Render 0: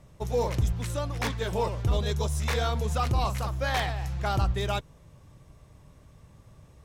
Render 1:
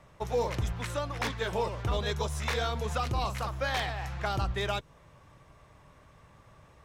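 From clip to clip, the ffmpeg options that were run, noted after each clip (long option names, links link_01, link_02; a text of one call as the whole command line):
ffmpeg -i in.wav -filter_complex "[0:a]equalizer=frequency=1400:width=0.38:gain=13,acrossover=split=500|3000[link_01][link_02][link_03];[link_02]acompressor=threshold=-27dB:ratio=6[link_04];[link_01][link_04][link_03]amix=inputs=3:normalize=0,volume=-6.5dB" out.wav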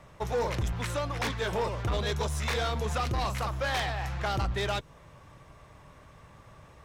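ffmpeg -i in.wav -af "asoftclip=type=tanh:threshold=-28dB,volume=4dB" out.wav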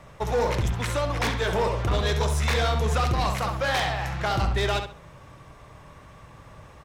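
ffmpeg -i in.wav -filter_complex "[0:a]asplit=2[link_01][link_02];[link_02]adelay=67,lowpass=frequency=4200:poles=1,volume=-6.5dB,asplit=2[link_03][link_04];[link_04]adelay=67,lowpass=frequency=4200:poles=1,volume=0.29,asplit=2[link_05][link_06];[link_06]adelay=67,lowpass=frequency=4200:poles=1,volume=0.29,asplit=2[link_07][link_08];[link_08]adelay=67,lowpass=frequency=4200:poles=1,volume=0.29[link_09];[link_01][link_03][link_05][link_07][link_09]amix=inputs=5:normalize=0,volume=4.5dB" out.wav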